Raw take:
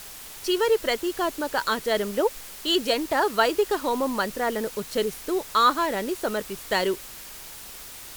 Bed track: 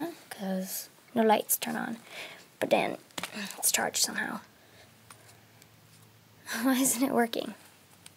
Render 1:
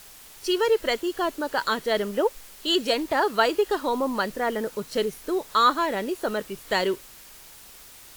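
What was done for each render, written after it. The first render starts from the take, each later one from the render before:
noise reduction from a noise print 6 dB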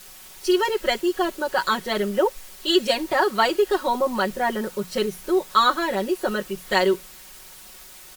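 mains-hum notches 60/120/180 Hz
comb filter 5.4 ms, depth 98%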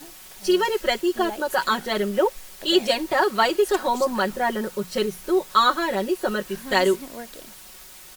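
mix in bed track −11.5 dB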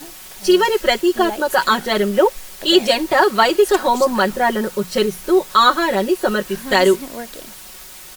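level +6.5 dB
brickwall limiter −2 dBFS, peak gain reduction 3 dB

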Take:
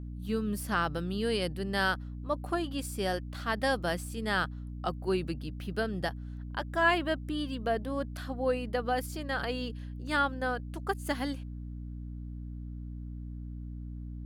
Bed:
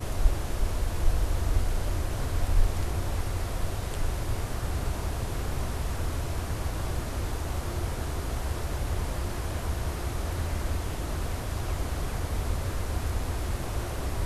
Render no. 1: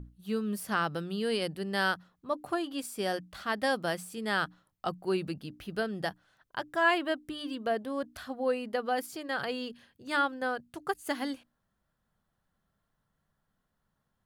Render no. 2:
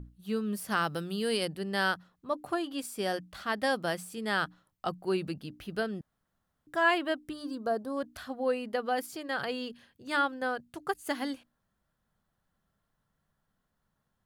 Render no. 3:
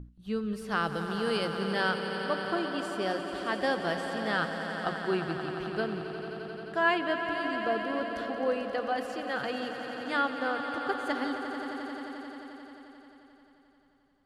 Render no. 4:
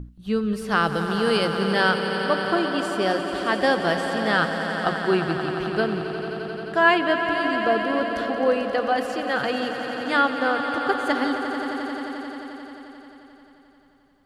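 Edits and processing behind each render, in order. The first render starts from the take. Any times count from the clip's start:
mains-hum notches 60/120/180/240/300 Hz
0:00.70–0:01.45: high-shelf EQ 6,600 Hz +10 dB; 0:06.01–0:06.67: fill with room tone; 0:07.33–0:07.97: flat-topped bell 2,500 Hz −14 dB 1.1 octaves
high-frequency loss of the air 74 metres; on a send: echo that builds up and dies away 88 ms, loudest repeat 5, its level −11.5 dB
level +8.5 dB

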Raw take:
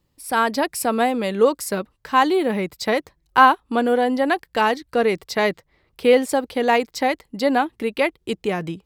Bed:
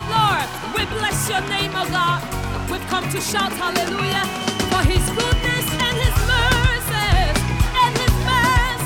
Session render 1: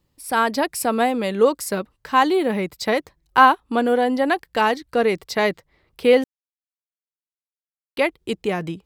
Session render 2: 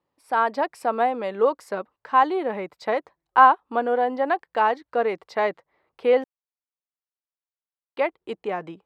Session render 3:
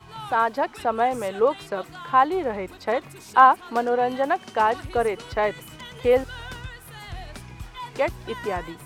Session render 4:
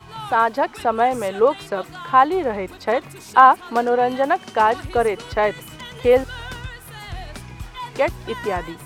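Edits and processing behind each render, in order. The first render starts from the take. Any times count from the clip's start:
0:06.24–0:07.97: silence
resonant band-pass 850 Hz, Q 1
mix in bed −20.5 dB
level +4 dB; brickwall limiter −1 dBFS, peak gain reduction 2 dB

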